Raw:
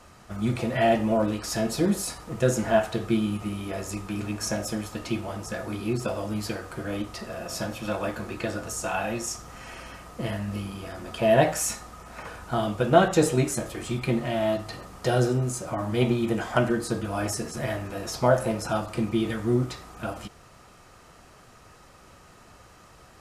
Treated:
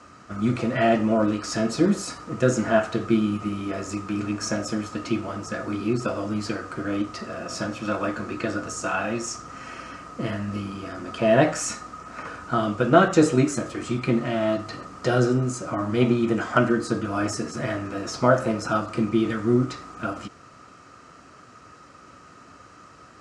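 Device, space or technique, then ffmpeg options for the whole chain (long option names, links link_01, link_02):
car door speaker: -af "highpass=88,equalizer=frequency=280:width_type=q:width=4:gain=8,equalizer=frequency=820:width_type=q:width=4:gain=-5,equalizer=frequency=1300:width_type=q:width=4:gain=8,equalizer=frequency=3500:width_type=q:width=4:gain=-4,lowpass=frequency=7800:width=0.5412,lowpass=frequency=7800:width=1.3066,volume=1.5dB"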